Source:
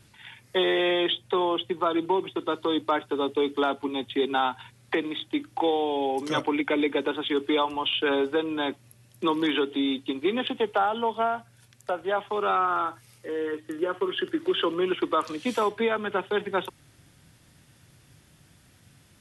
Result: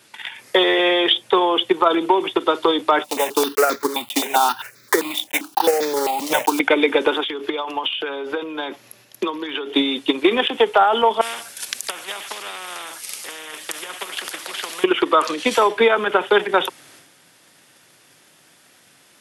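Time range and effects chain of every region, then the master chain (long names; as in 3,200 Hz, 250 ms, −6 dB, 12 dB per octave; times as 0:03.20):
0:03.04–0:06.60: one scale factor per block 3 bits + notch filter 3,300 Hz, Q 17 + step-sequenced phaser 7.6 Hz 400–2,900 Hz
0:07.21–0:09.74: parametric band 8,700 Hz −13 dB 0.3 octaves + downward compressor 8 to 1, threshold −31 dBFS
0:11.21–0:14.84: high-shelf EQ 2,800 Hz +11.5 dB + amplitude tremolo 2 Hz, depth 39% + every bin compressed towards the loudest bin 4 to 1
whole clip: high-pass filter 390 Hz 12 dB per octave; transient designer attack +11 dB, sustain +7 dB; boost into a limiter +11.5 dB; level −3.5 dB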